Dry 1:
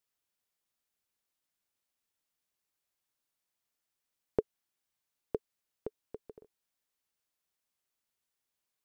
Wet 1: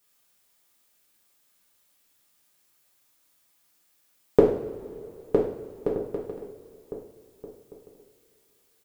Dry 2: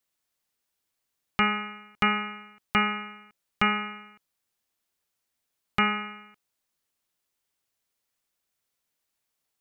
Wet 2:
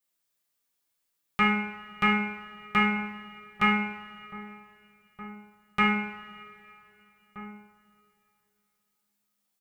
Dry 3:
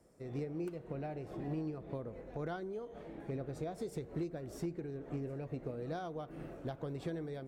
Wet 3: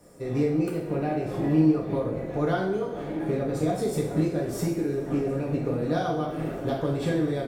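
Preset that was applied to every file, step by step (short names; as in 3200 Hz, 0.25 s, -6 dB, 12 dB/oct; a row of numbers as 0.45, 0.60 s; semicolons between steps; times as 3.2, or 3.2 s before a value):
high shelf 9100 Hz +5.5 dB; outdoor echo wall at 270 m, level -15 dB; two-slope reverb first 0.57 s, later 3.1 s, from -18 dB, DRR -4 dB; match loudness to -27 LUFS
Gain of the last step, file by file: +11.0, -6.5, +9.5 dB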